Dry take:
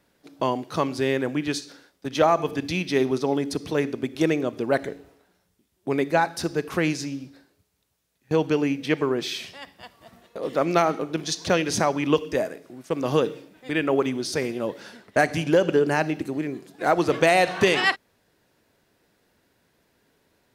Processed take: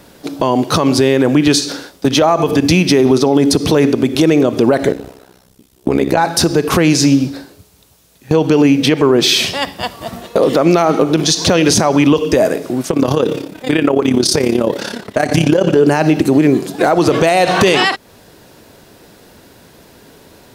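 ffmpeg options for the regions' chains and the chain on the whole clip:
ffmpeg -i in.wav -filter_complex "[0:a]asettb=1/sr,asplit=3[link_01][link_02][link_03];[link_01]atrim=end=2.594[link_04];[link_02]atrim=start=2.59:end=3.06,asetpts=PTS-STARTPTS,afade=type=in:duration=0.004:curve=qsin,afade=type=out:start_time=0.466:duration=0.004:curve=qsin,highpass=54,equalizer=frequency=3700:width_type=o:width=0.6:gain=-6[link_05];[link_03]atrim=start=3.056[link_06];[link_04][link_05]acrossfade=duration=0.004:curve1=hsin:curve2=qsin[link_07];[link_07][link_06]acrossfade=duration=0.004:curve1=qsin:curve2=hsin,asettb=1/sr,asplit=3[link_08][link_09][link_10];[link_08]atrim=end=4.924[link_11];[link_09]atrim=start=4.92:end=6.18,asetpts=PTS-STARTPTS,afade=type=in:duration=0.004:curve=qsin,afade=type=out:start_time=1.256:duration=0.004:curve=qsin,acompressor=threshold=-29dB:ratio=2:attack=3.2:release=140:knee=1:detection=peak,tremolo=f=64:d=0.947[link_12];[link_10]atrim=start=6.176[link_13];[link_11][link_12]acrossfade=duration=0.004:curve1=hsin:curve2=qsin[link_14];[link_14][link_13]acrossfade=duration=0.004:curve1=qsin:curve2=hsin,asettb=1/sr,asplit=3[link_15][link_16][link_17];[link_15]atrim=end=12.914[link_18];[link_16]atrim=start=12.91:end=15.77,asetpts=PTS-STARTPTS,afade=type=in:duration=0.004:curve=qsin,afade=type=out:start_time=2.856:duration=0.004:curve=qsin,acompressor=threshold=-28dB:ratio=2:attack=3.2:release=140:knee=1:detection=peak,tremolo=f=34:d=0.75[link_19];[link_17]atrim=start=15.766[link_20];[link_18][link_19]acrossfade=duration=0.004:curve1=hsin:curve2=qsin[link_21];[link_21][link_20]acrossfade=duration=0.004:curve1=qsin:curve2=hsin,equalizer=frequency=1900:width=1.4:gain=-5,acompressor=threshold=-31dB:ratio=2,alimiter=level_in=25dB:limit=-1dB:release=50:level=0:latency=1,volume=-1dB" out.wav

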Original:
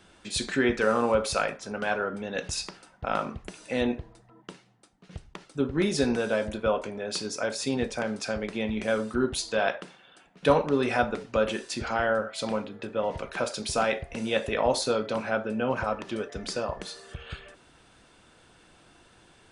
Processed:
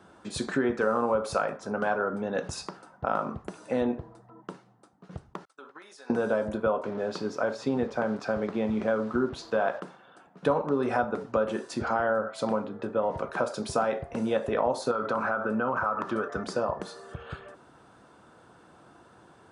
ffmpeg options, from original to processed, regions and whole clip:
ffmpeg -i in.wav -filter_complex "[0:a]asettb=1/sr,asplit=3[link_01][link_02][link_03];[link_01]atrim=end=5.454[link_04];[link_02]atrim=start=5.45:end=6.1,asetpts=PTS-STARTPTS,afade=type=in:duration=0.004:curve=qsin,afade=type=out:start_time=0.646:duration=0.004:curve=qsin,highpass=1200,agate=range=-33dB:threshold=-50dB:ratio=3:release=100:detection=peak,acompressor=threshold=-45dB:ratio=5:attack=3.2:release=140:knee=1:detection=peak[link_05];[link_03]atrim=start=6.096[link_06];[link_04][link_05]acrossfade=duration=0.004:curve1=hsin:curve2=qsin[link_07];[link_07][link_06]acrossfade=duration=0.004:curve1=qsin:curve2=hsin,asettb=1/sr,asplit=3[link_08][link_09][link_10];[link_08]atrim=end=6.834[link_11];[link_09]atrim=start=6.83:end=9.8,asetpts=PTS-STARTPTS,afade=type=in:duration=0.004:curve=qsin,afade=type=out:start_time=2.966:duration=0.004:curve=qsin,acrusher=bits=6:mix=0:aa=0.5,lowpass=4500[link_12];[link_10]atrim=start=9.796[link_13];[link_11][link_12]acrossfade=duration=0.004:curve1=hsin:curve2=qsin[link_14];[link_14][link_13]acrossfade=duration=0.004:curve1=qsin:curve2=hsin,asettb=1/sr,asplit=3[link_15][link_16][link_17];[link_15]atrim=end=14.914[link_18];[link_16]atrim=start=14.91:end=16.44,asetpts=PTS-STARTPTS,afade=type=in:duration=0.004:curve=qsin,afade=type=out:start_time=1.526:duration=0.004:curve=qsin,equalizer=frequency=1300:width_type=o:width=0.81:gain=11.5,acompressor=threshold=-26dB:ratio=5:attack=3.2:release=140:knee=1:detection=peak[link_19];[link_17]atrim=start=16.436[link_20];[link_18][link_19]acrossfade=duration=0.004:curve1=hsin:curve2=qsin[link_21];[link_21][link_20]acrossfade=duration=0.004:curve1=qsin:curve2=hsin,highpass=100,highshelf=frequency=1700:width_type=q:width=1.5:gain=-9.5,acompressor=threshold=-27dB:ratio=3,volume=3.5dB" out.wav

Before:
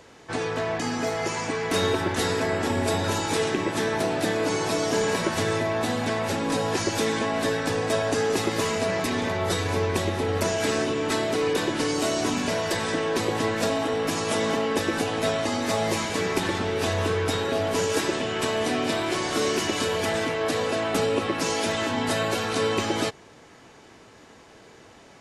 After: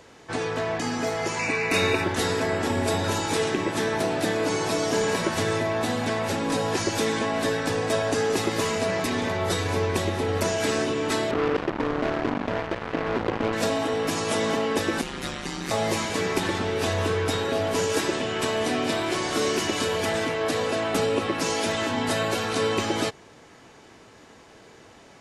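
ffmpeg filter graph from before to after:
ffmpeg -i in.wav -filter_complex "[0:a]asettb=1/sr,asplit=3[link_01][link_02][link_03];[link_01]atrim=end=1.394[link_04];[link_02]atrim=start=1.39:end=2.04,asetpts=PTS-STARTPTS,afade=type=in:duration=0.004:curve=qsin,afade=type=out:start_time=0.646:duration=0.004:curve=qsin,asuperstop=centerf=3200:order=20:qfactor=6.1,equalizer=frequency=2400:width_type=o:width=0.37:gain=14,bandreject=frequency=433.9:width_type=h:width=4,bandreject=frequency=867.8:width_type=h:width=4,bandreject=frequency=1301.7:width_type=h:width=4,bandreject=frequency=1735.6:width_type=h:width=4,bandreject=frequency=2169.5:width_type=h:width=4,bandreject=frequency=2603.4:width_type=h:width=4,bandreject=frequency=3037.3:width_type=h:width=4,bandreject=frequency=3471.2:width_type=h:width=4,bandreject=frequency=3905.1:width_type=h:width=4,bandreject=frequency=4339:width_type=h:width=4,bandreject=frequency=4772.9:width_type=h:width=4,bandreject=frequency=5206.8:width_type=h:width=4,bandreject=frequency=5640.7:width_type=h:width=4,bandreject=frequency=6074.6:width_type=h:width=4,bandreject=frequency=6508.5:width_type=h:width=4,bandreject=frequency=6942.4:width_type=h:width=4,bandreject=frequency=7376.3:width_type=h:width=4,bandreject=frequency=7810.2:width_type=h:width=4,bandreject=frequency=8244.1:width_type=h:width=4,bandreject=frequency=8678:width_type=h:width=4,bandreject=frequency=9111.9:width_type=h:width=4,bandreject=frequency=9545.8:width_type=h:width=4,bandreject=frequency=9979.7:width_type=h:width=4,bandreject=frequency=10413.6:width_type=h:width=4,bandreject=frequency=10847.5:width_type=h:width=4,bandreject=frequency=11281.4:width_type=h:width=4,bandreject=frequency=11715.3:width_type=h:width=4,bandreject=frequency=12149.2:width_type=h:width=4,bandreject=frequency=12583.1:width_type=h:width=4,bandreject=frequency=13017:width_type=h:width=4,bandreject=frequency=13450.9:width_type=h:width=4,bandreject=frequency=13884.8:width_type=h:width=4,bandreject=frequency=14318.7:width_type=h:width=4,bandreject=frequency=14752.6:width_type=h:width=4,bandreject=frequency=15186.5:width_type=h:width=4,bandreject=frequency=15620.4:width_type=h:width=4,bandreject=frequency=16054.3:width_type=h:width=4[link_05];[link_03]atrim=start=2.036[link_06];[link_04][link_05]acrossfade=duration=0.004:curve1=hsin:curve2=qsin[link_07];[link_07][link_06]acrossfade=duration=0.004:curve1=qsin:curve2=hsin,asettb=1/sr,asplit=3[link_08][link_09][link_10];[link_08]atrim=end=11.314[link_11];[link_09]atrim=start=11.31:end=13.53,asetpts=PTS-STARTPTS,afade=type=in:duration=0.004:curve=qsin,afade=type=out:start_time=2.216:duration=0.004:curve=qsin,lowpass=1100,acrusher=bits=3:mix=0:aa=0.5[link_12];[link_10]atrim=start=13.526[link_13];[link_11][link_12]acrossfade=duration=0.004:curve1=hsin:curve2=qsin[link_14];[link_14][link_13]acrossfade=duration=0.004:curve1=qsin:curve2=hsin,asettb=1/sr,asplit=3[link_15][link_16][link_17];[link_15]atrim=end=15.014[link_18];[link_16]atrim=start=15.01:end=15.71,asetpts=PTS-STARTPTS,afade=type=in:duration=0.004:curve=qsin,afade=type=out:start_time=0.696:duration=0.004:curve=qsin,equalizer=frequency=580:width=1.7:gain=-15,aeval=exprs='val(0)*sin(2*PI*70*n/s)':channel_layout=same[link_19];[link_17]atrim=start=15.706[link_20];[link_18][link_19]acrossfade=duration=0.004:curve1=hsin:curve2=qsin[link_21];[link_21][link_20]acrossfade=duration=0.004:curve1=qsin:curve2=hsin" out.wav

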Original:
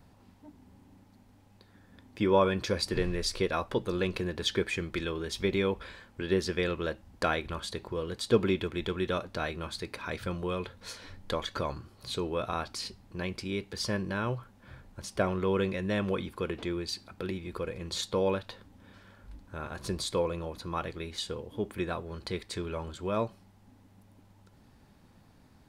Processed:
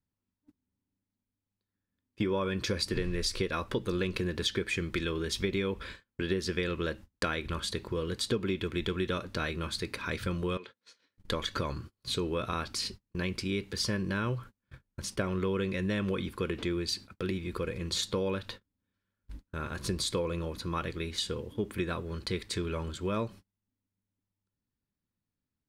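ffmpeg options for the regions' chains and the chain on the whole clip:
ffmpeg -i in.wav -filter_complex "[0:a]asettb=1/sr,asplit=3[link_01][link_02][link_03];[link_01]atrim=end=10.574[link_04];[link_02]atrim=start=10.57:end=11.18,asetpts=PTS-STARTPTS,afade=type=in:duration=0.004:curve=qsin,afade=type=out:start_time=0.606:duration=0.004:curve=qsin,highshelf=frequency=3800:gain=3,acompressor=threshold=-44dB:ratio=4:attack=3.2:release=140:knee=1:detection=peak,highpass=270,lowpass=6000[link_05];[link_03]atrim=start=11.176[link_06];[link_04][link_05]acrossfade=duration=0.004:curve1=hsin:curve2=qsin[link_07];[link_07][link_06]acrossfade=duration=0.004:curve1=qsin:curve2=hsin,agate=range=-33dB:threshold=-46dB:ratio=16:detection=peak,equalizer=frequency=740:width_type=o:width=0.77:gain=-10,acompressor=threshold=-31dB:ratio=6,volume=4dB" out.wav

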